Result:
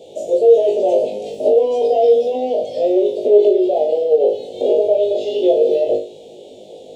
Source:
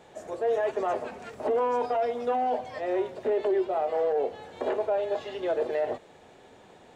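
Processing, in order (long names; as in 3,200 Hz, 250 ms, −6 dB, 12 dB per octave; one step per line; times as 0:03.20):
in parallel at −11 dB: soft clipping −32.5 dBFS, distortion −7 dB
on the sum: Chebyshev band-stop filter 550–3,200 Hz, order 3
parametric band 860 Hz +13.5 dB 2.7 octaves
brickwall limiter −14 dBFS, peak gain reduction 4.5 dB
low-shelf EQ 160 Hz −10.5 dB
flutter between parallel walls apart 3.3 metres, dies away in 0.37 s
level +6 dB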